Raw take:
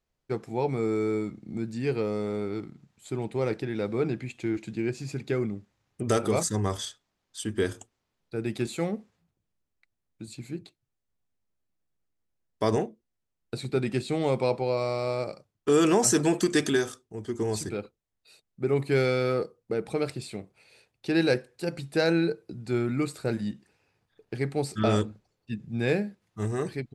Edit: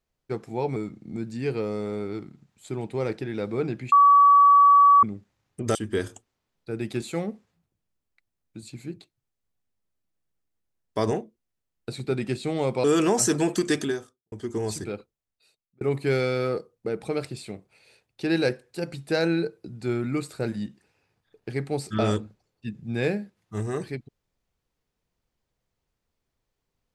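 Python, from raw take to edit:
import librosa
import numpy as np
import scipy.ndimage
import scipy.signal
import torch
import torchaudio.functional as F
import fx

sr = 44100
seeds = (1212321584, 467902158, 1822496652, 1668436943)

y = fx.studio_fade_out(x, sr, start_s=16.53, length_s=0.64)
y = fx.edit(y, sr, fx.cut(start_s=0.76, length_s=0.41),
    fx.bleep(start_s=4.33, length_s=1.11, hz=1140.0, db=-11.5),
    fx.cut(start_s=6.16, length_s=1.24),
    fx.cut(start_s=14.49, length_s=1.2),
    fx.fade_out_span(start_s=17.8, length_s=0.86), tone=tone)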